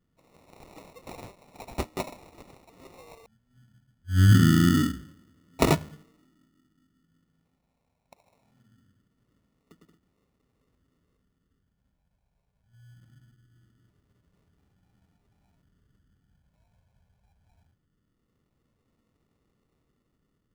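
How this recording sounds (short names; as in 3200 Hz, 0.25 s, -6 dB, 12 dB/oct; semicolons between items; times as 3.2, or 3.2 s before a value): phasing stages 4, 0.22 Hz, lowest notch 310–3300 Hz; aliases and images of a low sample rate 1600 Hz, jitter 0%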